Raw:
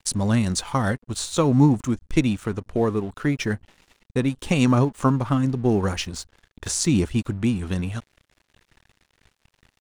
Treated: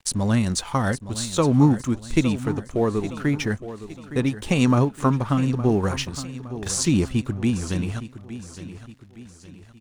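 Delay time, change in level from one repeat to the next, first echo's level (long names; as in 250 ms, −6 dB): 864 ms, −7.5 dB, −13.5 dB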